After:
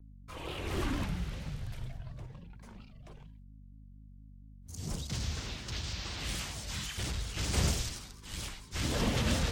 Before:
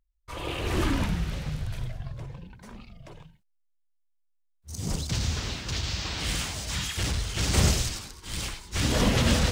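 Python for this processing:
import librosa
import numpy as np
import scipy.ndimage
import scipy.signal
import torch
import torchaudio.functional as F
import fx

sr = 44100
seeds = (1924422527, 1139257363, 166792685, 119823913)

y = fx.add_hum(x, sr, base_hz=50, snr_db=16)
y = fx.vibrato_shape(y, sr, shape='square', rate_hz=4.3, depth_cents=100.0)
y = y * librosa.db_to_amplitude(-7.5)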